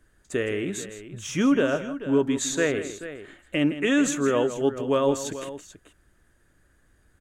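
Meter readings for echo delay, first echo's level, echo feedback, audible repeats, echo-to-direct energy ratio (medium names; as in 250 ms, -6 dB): 162 ms, -12.5 dB, no regular repeats, 2, -10.0 dB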